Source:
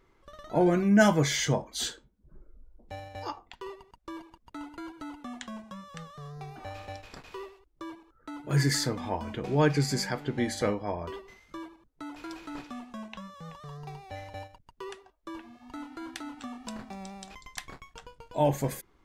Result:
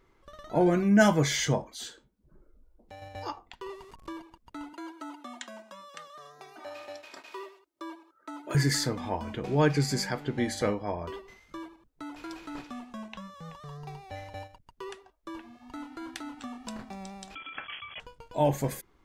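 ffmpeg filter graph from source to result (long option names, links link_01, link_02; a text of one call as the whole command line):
ffmpeg -i in.wav -filter_complex "[0:a]asettb=1/sr,asplit=3[link_01][link_02][link_03];[link_01]atrim=end=1.694[link_04];[link_02]atrim=start=1.69:end=3.02,asetpts=PTS-STARTPTS,afade=type=in:duration=0.004:curve=qsin,afade=type=out:start_time=1.326:duration=0.004:curve=qsin,lowshelf=frequency=120:gain=-7.5,acompressor=threshold=-51dB:ratio=1.5:attack=3.2:release=140:knee=1:detection=peak[link_05];[link_03]atrim=start=3.016[link_06];[link_04][link_05]acrossfade=duration=0.004:curve1=hsin:curve2=qsin[link_07];[link_07][link_06]acrossfade=duration=0.004:curve1=qsin:curve2=hsin,asettb=1/sr,asplit=3[link_08][link_09][link_10];[link_08]atrim=end=3.694[link_11];[link_09]atrim=start=3.69:end=4.13,asetpts=PTS-STARTPTS,afade=type=in:duration=0.004:curve=qsin,afade=type=out:start_time=0.436:duration=0.004:curve=qsin,aeval=exprs='val(0)+0.5*0.00398*sgn(val(0))':channel_layout=same,lowpass=12000,aeval=exprs='val(0)+0.000794*sin(2*PI*1100*n/s)':channel_layout=same[link_12];[link_10]atrim=start=4.126[link_13];[link_11][link_12]acrossfade=duration=0.004:curve1=hsin:curve2=qsin[link_14];[link_14][link_13]acrossfade=duration=0.004:curve1=qsin:curve2=hsin,asettb=1/sr,asplit=3[link_15][link_16][link_17];[link_15]atrim=end=4.734[link_18];[link_16]atrim=start=4.73:end=8.55,asetpts=PTS-STARTPTS,afade=type=in:duration=0.004:curve=qsin,afade=type=out:start_time=3.816:duration=0.004:curve=qsin,highpass=380,aecho=1:1:3.2:0.6,atrim=end_sample=168462[link_19];[link_17]atrim=start=8.546[link_20];[link_18][link_19]acrossfade=duration=0.004:curve1=hsin:curve2=qsin[link_21];[link_21][link_20]acrossfade=duration=0.004:curve1=qsin:curve2=hsin,asettb=1/sr,asplit=3[link_22][link_23][link_24];[link_22]atrim=end=17.354[link_25];[link_23]atrim=start=17.35:end=18,asetpts=PTS-STARTPTS,afade=type=in:duration=0.004:curve=qsin,afade=type=out:start_time=0.646:duration=0.004:curve=qsin,aeval=exprs='val(0)+0.5*0.0133*sgn(val(0))':channel_layout=same,highpass=frequency=77:poles=1,lowpass=frequency=2900:width_type=q:width=0.5098,lowpass=frequency=2900:width_type=q:width=0.6013,lowpass=frequency=2900:width_type=q:width=0.9,lowpass=frequency=2900:width_type=q:width=2.563,afreqshift=-3400[link_26];[link_24]atrim=start=17.996[link_27];[link_25][link_26]acrossfade=duration=0.004:curve1=hsin:curve2=qsin[link_28];[link_28][link_27]acrossfade=duration=0.004:curve1=qsin:curve2=hsin" out.wav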